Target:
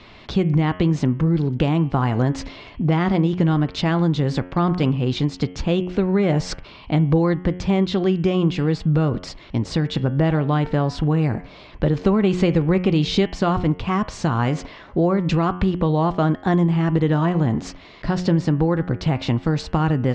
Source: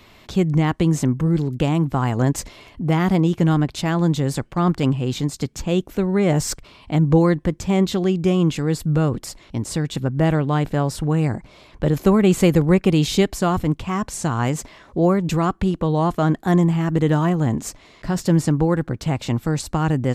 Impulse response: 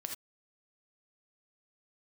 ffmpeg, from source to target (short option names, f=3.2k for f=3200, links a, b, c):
-af "lowpass=f=4.9k:w=0.5412,lowpass=f=4.9k:w=1.3066,bandreject=f=90.2:t=h:w=4,bandreject=f=180.4:t=h:w=4,bandreject=f=270.6:t=h:w=4,bandreject=f=360.8:t=h:w=4,bandreject=f=451:t=h:w=4,bandreject=f=541.2:t=h:w=4,bandreject=f=631.4:t=h:w=4,bandreject=f=721.6:t=h:w=4,bandreject=f=811.8:t=h:w=4,bandreject=f=902:t=h:w=4,bandreject=f=992.2:t=h:w=4,bandreject=f=1.0824k:t=h:w=4,bandreject=f=1.1726k:t=h:w=4,bandreject=f=1.2628k:t=h:w=4,bandreject=f=1.353k:t=h:w=4,bandreject=f=1.4432k:t=h:w=4,bandreject=f=1.5334k:t=h:w=4,bandreject=f=1.6236k:t=h:w=4,bandreject=f=1.7138k:t=h:w=4,bandreject=f=1.804k:t=h:w=4,bandreject=f=1.8942k:t=h:w=4,bandreject=f=1.9844k:t=h:w=4,bandreject=f=2.0746k:t=h:w=4,bandreject=f=2.1648k:t=h:w=4,bandreject=f=2.255k:t=h:w=4,bandreject=f=2.3452k:t=h:w=4,bandreject=f=2.4354k:t=h:w=4,bandreject=f=2.5256k:t=h:w=4,bandreject=f=2.6158k:t=h:w=4,bandreject=f=2.706k:t=h:w=4,bandreject=f=2.7962k:t=h:w=4,bandreject=f=2.8864k:t=h:w=4,bandreject=f=2.9766k:t=h:w=4,bandreject=f=3.0668k:t=h:w=4,bandreject=f=3.157k:t=h:w=4,bandreject=f=3.2472k:t=h:w=4,bandreject=f=3.3374k:t=h:w=4,acompressor=threshold=-21dB:ratio=2.5,volume=4.5dB"